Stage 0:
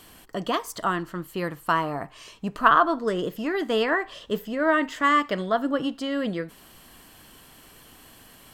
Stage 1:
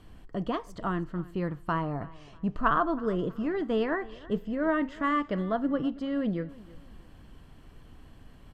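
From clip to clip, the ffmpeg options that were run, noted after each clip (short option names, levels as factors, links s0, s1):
-af "aemphasis=mode=reproduction:type=riaa,aecho=1:1:322|644|966:0.0944|0.0321|0.0109,volume=0.422"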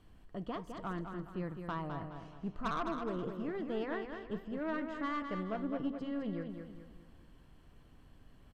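-af "aeval=exprs='(tanh(12.6*val(0)+0.35)-tanh(0.35))/12.6':c=same,aecho=1:1:209|418|627|836|1045:0.473|0.185|0.072|0.0281|0.0109,volume=0.398"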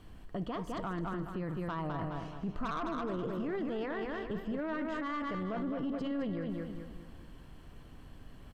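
-af "alimiter=level_in=4.22:limit=0.0631:level=0:latency=1:release=13,volume=0.237,volume=2.51"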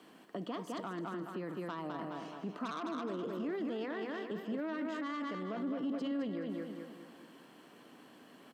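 -filter_complex "[0:a]highpass=f=230:w=0.5412,highpass=f=230:w=1.3066,acrossover=split=290|3000[s0][s1][s2];[s1]acompressor=threshold=0.00447:ratio=2[s3];[s0][s3][s2]amix=inputs=3:normalize=0,volume=1.33"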